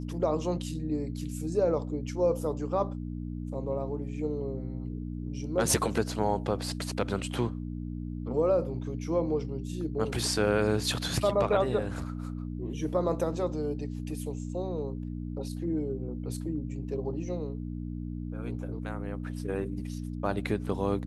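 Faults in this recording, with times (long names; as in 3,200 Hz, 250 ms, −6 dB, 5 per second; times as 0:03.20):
mains hum 60 Hz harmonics 5 −36 dBFS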